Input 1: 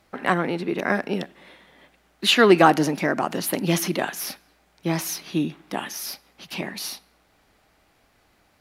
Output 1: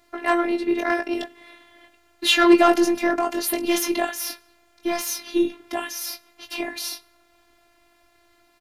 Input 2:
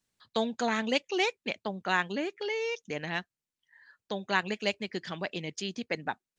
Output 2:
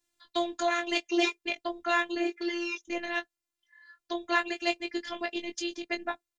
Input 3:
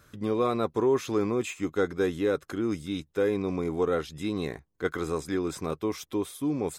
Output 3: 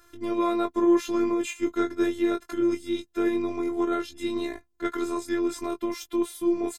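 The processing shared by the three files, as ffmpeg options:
-filter_complex "[0:a]asplit=2[a][b];[b]adelay=20,volume=-7dB[c];[a][c]amix=inputs=2:normalize=0,acontrast=77,afftfilt=real='hypot(re,im)*cos(PI*b)':imag='0':win_size=512:overlap=0.75,volume=-2.5dB"

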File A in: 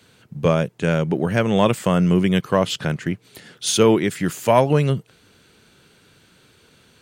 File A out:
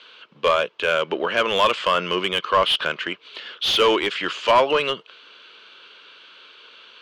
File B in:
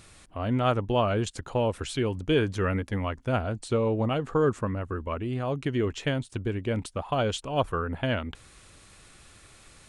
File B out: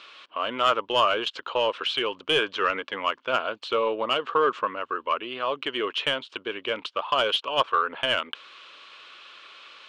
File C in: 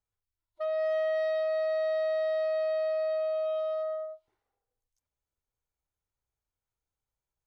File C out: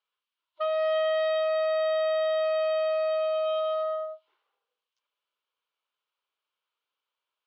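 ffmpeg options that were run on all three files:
-filter_complex "[0:a]crystalizer=i=4.5:c=0,highpass=500,equalizer=f=760:t=q:w=4:g=-10,equalizer=f=1.1k:t=q:w=4:g=4,equalizer=f=1.9k:t=q:w=4:g=-7,equalizer=f=3k:t=q:w=4:g=6,lowpass=f=3.9k:w=0.5412,lowpass=f=3.9k:w=1.3066,asplit=2[a][b];[b]highpass=f=720:p=1,volume=18dB,asoftclip=type=tanh:threshold=-3dB[c];[a][c]amix=inputs=2:normalize=0,lowpass=f=1.4k:p=1,volume=-6dB,volume=-2dB"

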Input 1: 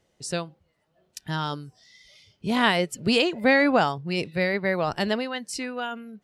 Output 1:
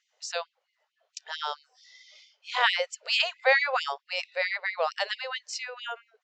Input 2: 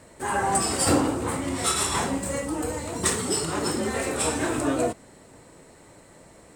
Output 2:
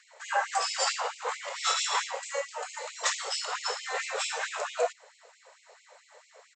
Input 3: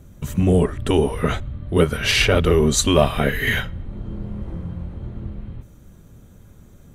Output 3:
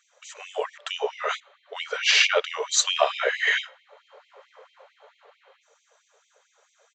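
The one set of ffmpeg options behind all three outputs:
-af "aresample=16000,aresample=44100,afftfilt=real='re*gte(b*sr/1024,400*pow(2100/400,0.5+0.5*sin(2*PI*4.5*pts/sr)))':imag='im*gte(b*sr/1024,400*pow(2100/400,0.5+0.5*sin(2*PI*4.5*pts/sr)))':win_size=1024:overlap=0.75"

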